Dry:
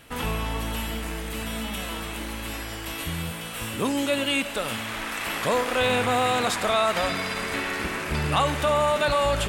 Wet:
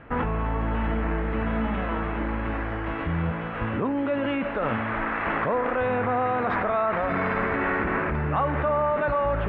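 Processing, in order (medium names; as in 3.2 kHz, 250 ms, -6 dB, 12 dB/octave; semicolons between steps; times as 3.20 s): low-pass 1.8 kHz 24 dB/octave; in parallel at +0.5 dB: compressor with a negative ratio -31 dBFS, ratio -0.5; on the sum: trim -2 dB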